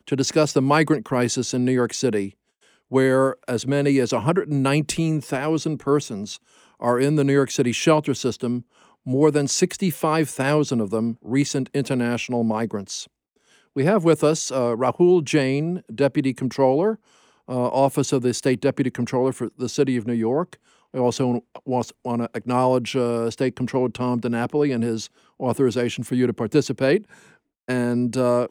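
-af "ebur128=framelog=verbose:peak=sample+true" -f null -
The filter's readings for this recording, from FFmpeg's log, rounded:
Integrated loudness:
  I:         -21.9 LUFS
  Threshold: -32.3 LUFS
Loudness range:
  LRA:         2.8 LU
  Threshold: -42.4 LUFS
  LRA low:   -23.8 LUFS
  LRA high:  -21.0 LUFS
Sample peak:
  Peak:       -3.8 dBFS
True peak:
  Peak:       -3.8 dBFS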